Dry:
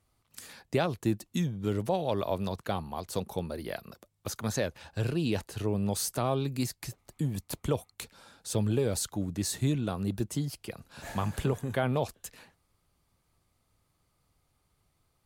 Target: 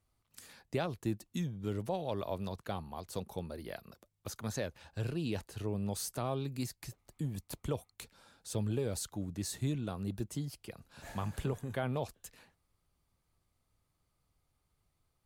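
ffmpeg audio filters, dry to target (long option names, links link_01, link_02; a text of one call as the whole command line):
ffmpeg -i in.wav -af "lowshelf=frequency=64:gain=5.5,volume=-7dB" out.wav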